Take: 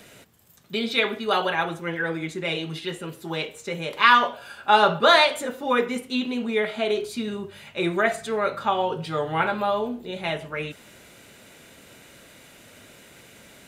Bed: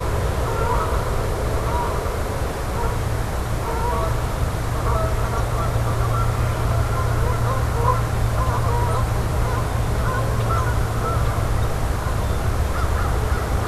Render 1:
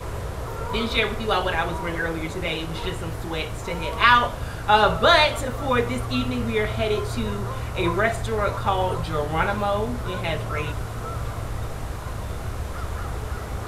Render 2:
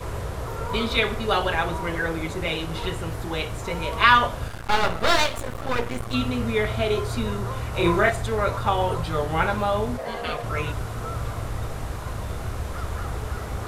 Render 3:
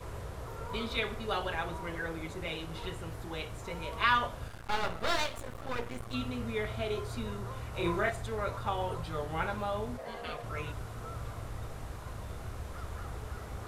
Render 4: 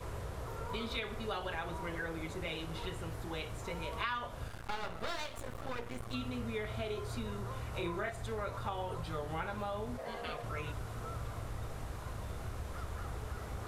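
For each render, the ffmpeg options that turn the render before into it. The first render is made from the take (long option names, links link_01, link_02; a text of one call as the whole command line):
ffmpeg -i in.wav -i bed.wav -filter_complex "[1:a]volume=-9dB[link_01];[0:a][link_01]amix=inputs=2:normalize=0" out.wav
ffmpeg -i in.wav -filter_complex "[0:a]asettb=1/sr,asplit=3[link_01][link_02][link_03];[link_01]atrim=end=4.484[link_04];[link_02]atrim=start=4.48:end=6.14,asetpts=PTS-STARTPTS,afade=type=in:duration=0.004:curve=qsin,afade=type=out:start_time=1.656:duration=0.004:curve=qsin,aeval=exprs='max(val(0),0)':channel_layout=same[link_05];[link_03]atrim=start=6.136[link_06];[link_04][link_05]acrossfade=duration=0.004:curve1=hsin:curve2=qsin[link_07];[link_07][link_06]acrossfade=duration=0.004:curve1=qsin:curve2=hsin,asettb=1/sr,asplit=3[link_08][link_09][link_10];[link_08]atrim=end=7.704[link_11];[link_09]atrim=start=7.7:end=8.1,asetpts=PTS-STARTPTS,afade=type=in:duration=0.004:curve=qsin,afade=type=out:start_time=0.396:duration=0.004:curve=qsin,asplit=2[link_12][link_13];[link_13]adelay=29,volume=-3dB[link_14];[link_12][link_14]amix=inputs=2:normalize=0,atrim=end_sample=17640[link_15];[link_10]atrim=start=8.096[link_16];[link_11][link_15]acrossfade=duration=0.004:curve1=hsin:curve2=qsin[link_17];[link_17][link_16]acrossfade=duration=0.004:curve1=qsin:curve2=hsin,asplit=3[link_18][link_19][link_20];[link_18]afade=type=out:start_time=9.97:duration=0.02[link_21];[link_19]aeval=exprs='val(0)*sin(2*PI*590*n/s)':channel_layout=same,afade=type=in:start_time=9.97:duration=0.02,afade=type=out:start_time=10.42:duration=0.02[link_22];[link_20]afade=type=in:start_time=10.42:duration=0.02[link_23];[link_21][link_22][link_23]amix=inputs=3:normalize=0" out.wav
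ffmpeg -i in.wav -af "volume=-11dB" out.wav
ffmpeg -i in.wav -af "acompressor=threshold=-35dB:ratio=4" out.wav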